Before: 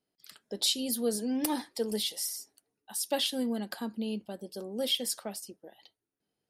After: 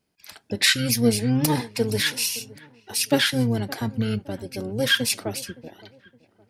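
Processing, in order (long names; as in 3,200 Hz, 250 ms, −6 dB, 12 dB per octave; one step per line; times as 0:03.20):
pitch-shifted copies added −12 semitones −1 dB
delay with a low-pass on its return 566 ms, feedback 35%, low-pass 1,800 Hz, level −20 dB
level +7 dB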